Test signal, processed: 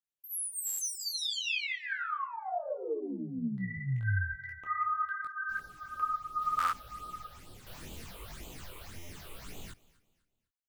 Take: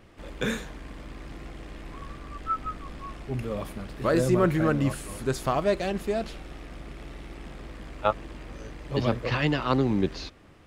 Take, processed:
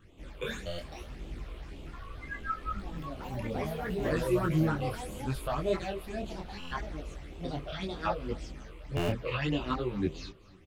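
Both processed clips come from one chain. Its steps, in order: phaser stages 8, 1.8 Hz, lowest notch 210–1700 Hz; on a send: feedback echo 0.253 s, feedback 36%, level -21 dB; on the sum: echoes that change speed 0.33 s, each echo +4 st, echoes 2, each echo -6 dB; stuck buffer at 0.66/6.58/8.96, samples 512, times 10; detuned doubles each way 25 cents

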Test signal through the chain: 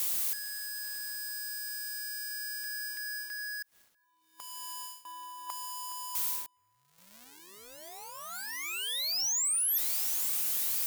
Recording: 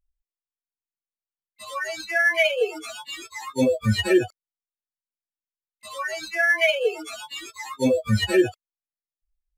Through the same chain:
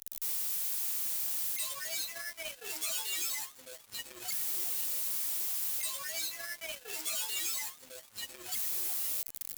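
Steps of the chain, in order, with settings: zero-crossing step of -29.5 dBFS; bell 1500 Hz -6 dB 0.44 oct; reverse; compressor 12:1, threshold -32 dBFS; reverse; auto swell 0.753 s; RIAA curve recording; soft clip -20.5 dBFS; on a send: echo with dull and thin repeats by turns 0.416 s, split 2200 Hz, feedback 73%, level -12.5 dB; on the sum: added harmonics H 5 -33 dB, 7 -15 dB, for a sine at -18.5 dBFS; gain -6 dB

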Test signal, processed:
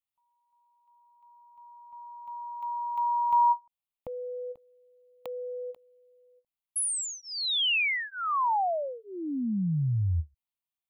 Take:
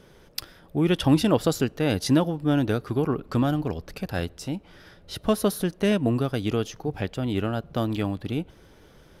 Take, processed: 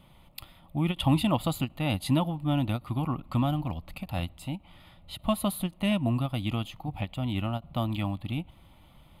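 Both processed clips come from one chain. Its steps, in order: fixed phaser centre 1600 Hz, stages 6; ending taper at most 420 dB/s

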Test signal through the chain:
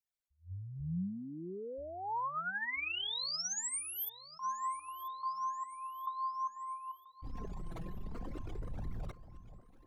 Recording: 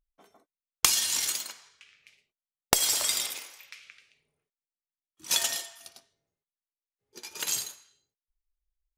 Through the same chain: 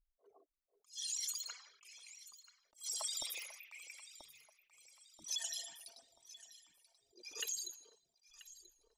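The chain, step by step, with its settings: formant sharpening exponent 3; compressor 10:1, threshold -33 dBFS; flange 0.45 Hz, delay 0.8 ms, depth 5.4 ms, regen +19%; on a send: echo with dull and thin repeats by turns 0.492 s, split 980 Hz, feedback 66%, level -13 dB; on the sum: attack slew limiter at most 240 dB/s

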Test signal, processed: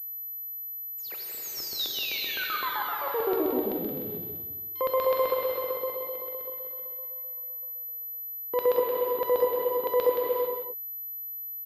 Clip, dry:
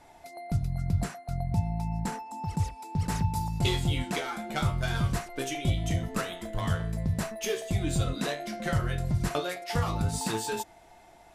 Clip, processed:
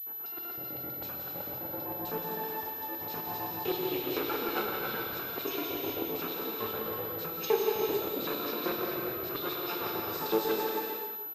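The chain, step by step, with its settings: minimum comb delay 0.77 ms; tilt shelf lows +5 dB, about 1100 Hz; in parallel at -3 dB: compressor, threshold -34 dBFS; on the sum: limiter -18.5 dBFS; LFO high-pass square 7.8 Hz 400–3900 Hz; on a send: echo 0.173 s -7 dB; on the sum: non-linear reverb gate 0.48 s flat, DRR -0.5 dB; pulse-width modulation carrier 12000 Hz; gain -3.5 dB

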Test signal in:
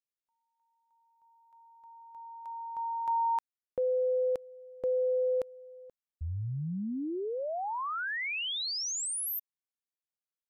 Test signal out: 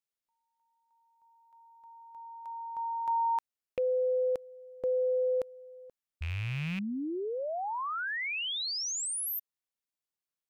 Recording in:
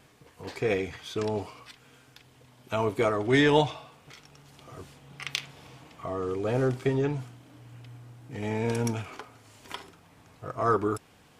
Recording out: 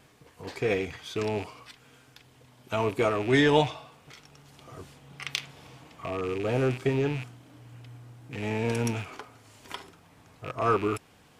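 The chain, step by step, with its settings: rattling part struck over -39 dBFS, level -29 dBFS

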